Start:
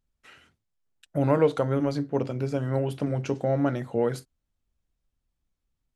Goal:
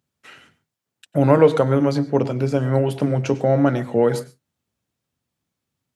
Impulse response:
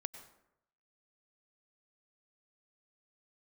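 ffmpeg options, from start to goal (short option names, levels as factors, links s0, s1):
-filter_complex "[0:a]highpass=f=99:w=0.5412,highpass=f=99:w=1.3066,asplit=2[s0][s1];[1:a]atrim=start_sample=2205,atrim=end_sample=6615[s2];[s1][s2]afir=irnorm=-1:irlink=0,volume=1.88[s3];[s0][s3]amix=inputs=2:normalize=0"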